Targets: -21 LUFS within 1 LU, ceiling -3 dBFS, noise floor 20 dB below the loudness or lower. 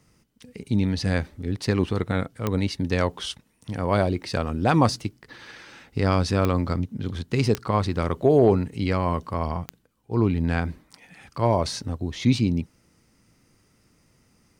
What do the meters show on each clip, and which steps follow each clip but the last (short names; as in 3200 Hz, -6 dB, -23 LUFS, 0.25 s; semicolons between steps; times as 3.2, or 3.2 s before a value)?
clicks 4; loudness -24.5 LUFS; peak -7.0 dBFS; loudness target -21.0 LUFS
-> de-click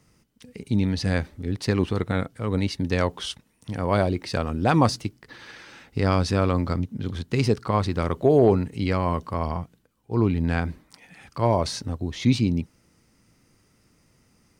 clicks 0; loudness -24.5 LUFS; peak -7.0 dBFS; loudness target -21.0 LUFS
-> gain +3.5 dB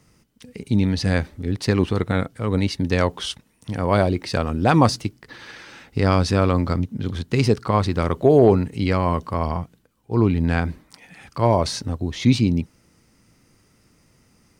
loudness -21.0 LUFS; peak -3.5 dBFS; noise floor -60 dBFS